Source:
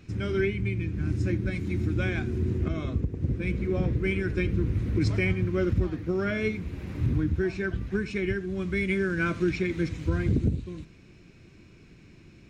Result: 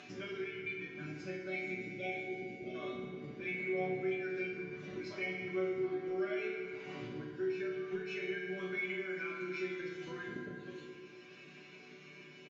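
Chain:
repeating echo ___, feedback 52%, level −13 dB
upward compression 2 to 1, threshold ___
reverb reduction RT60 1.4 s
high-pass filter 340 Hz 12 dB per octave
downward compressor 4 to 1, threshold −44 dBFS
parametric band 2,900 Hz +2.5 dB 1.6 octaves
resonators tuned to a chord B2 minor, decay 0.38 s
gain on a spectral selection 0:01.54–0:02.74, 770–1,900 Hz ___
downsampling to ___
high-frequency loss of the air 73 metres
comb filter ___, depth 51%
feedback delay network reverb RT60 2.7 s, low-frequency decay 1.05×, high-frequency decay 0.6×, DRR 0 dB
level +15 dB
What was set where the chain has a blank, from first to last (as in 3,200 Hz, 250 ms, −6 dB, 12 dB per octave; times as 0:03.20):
153 ms, −41 dBFS, −19 dB, 16,000 Hz, 5.1 ms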